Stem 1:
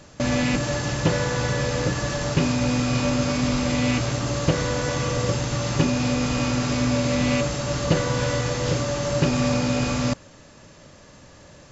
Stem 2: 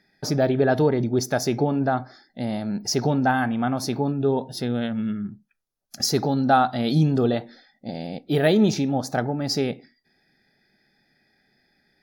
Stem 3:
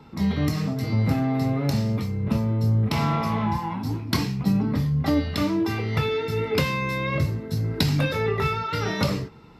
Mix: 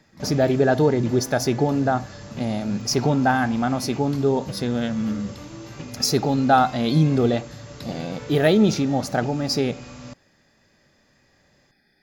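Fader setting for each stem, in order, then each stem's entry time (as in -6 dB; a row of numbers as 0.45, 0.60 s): -16.0, +1.5, -17.0 dB; 0.00, 0.00, 0.00 s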